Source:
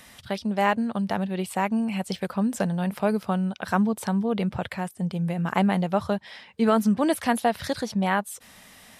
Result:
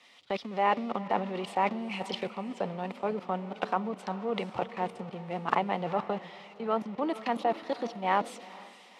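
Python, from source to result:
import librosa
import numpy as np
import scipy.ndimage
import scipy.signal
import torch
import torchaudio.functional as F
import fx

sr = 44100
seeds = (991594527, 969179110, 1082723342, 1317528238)

p1 = x + 0.5 * 10.0 ** (-32.0 / 20.0) * np.sign(x)
p2 = scipy.signal.sosfilt(scipy.signal.butter(2, 2600.0, 'lowpass', fs=sr, output='sos'), p1)
p3 = fx.peak_eq(p2, sr, hz=1600.0, db=-12.5, octaves=0.27)
p4 = fx.over_compress(p3, sr, threshold_db=-27.0, ratio=-0.5)
p5 = p3 + (p4 * librosa.db_to_amplitude(3.0))
p6 = fx.notch(p5, sr, hz=630.0, q=12.0)
p7 = fx.level_steps(p6, sr, step_db=21)
p8 = scipy.signal.sosfilt(scipy.signal.butter(2, 370.0, 'highpass', fs=sr, output='sos'), p7)
p9 = fx.echo_diffused(p8, sr, ms=452, feedback_pct=47, wet_db=-12.5)
p10 = fx.band_widen(p9, sr, depth_pct=70)
y = p10 * librosa.db_to_amplitude(-4.0)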